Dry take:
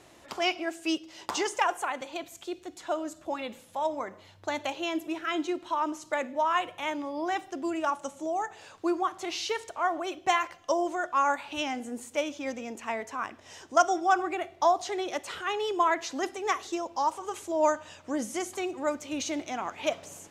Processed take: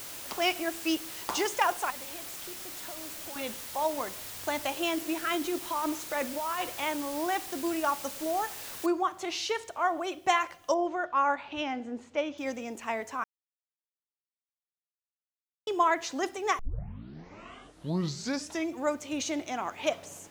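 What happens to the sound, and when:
1.9–3.36 compressor, threshold -43 dBFS
4.76–6.85 negative-ratio compressor -30 dBFS
8.86 noise floor step -42 dB -67 dB
10.74–12.38 air absorption 180 m
13.24–15.67 mute
16.59 tape start 2.30 s

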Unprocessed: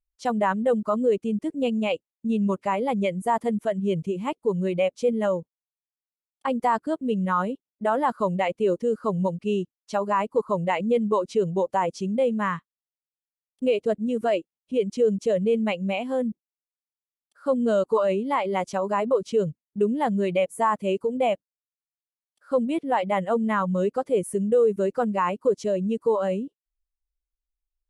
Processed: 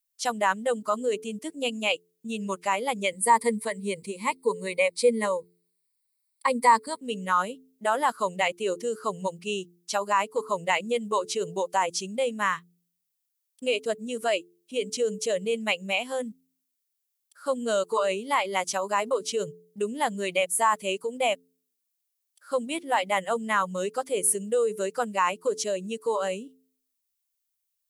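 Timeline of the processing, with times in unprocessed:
3.12–7 ripple EQ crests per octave 0.94, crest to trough 14 dB
whole clip: tilt +4.5 dB/oct; de-hum 87.03 Hz, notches 5

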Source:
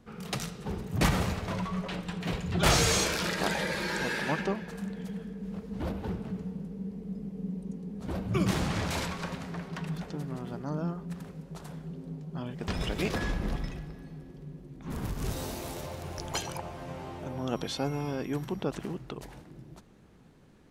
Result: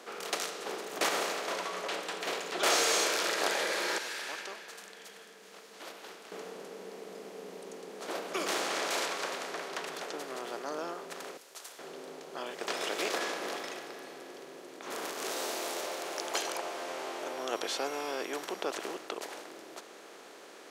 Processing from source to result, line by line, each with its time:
3.98–6.32 passive tone stack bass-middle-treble 5-5-5
11.37–11.79 pre-emphasis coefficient 0.97
whole clip: per-bin compression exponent 0.6; HPF 370 Hz 24 dB/oct; notch 900 Hz, Q 24; gain -3.5 dB

